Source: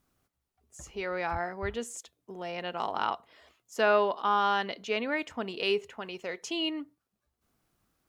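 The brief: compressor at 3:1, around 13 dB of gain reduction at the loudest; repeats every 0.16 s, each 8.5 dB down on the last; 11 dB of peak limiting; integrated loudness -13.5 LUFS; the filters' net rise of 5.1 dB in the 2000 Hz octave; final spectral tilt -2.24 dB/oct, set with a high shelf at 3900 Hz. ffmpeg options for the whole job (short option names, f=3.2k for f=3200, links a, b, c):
-af "equalizer=f=2k:t=o:g=5.5,highshelf=f=3.9k:g=6,acompressor=threshold=-36dB:ratio=3,alimiter=level_in=8.5dB:limit=-24dB:level=0:latency=1,volume=-8.5dB,aecho=1:1:160|320|480|640:0.376|0.143|0.0543|0.0206,volume=28.5dB"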